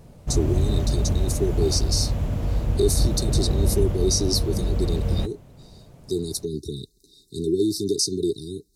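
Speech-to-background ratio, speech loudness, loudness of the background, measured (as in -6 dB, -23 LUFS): -1.5 dB, -26.5 LUFS, -25.0 LUFS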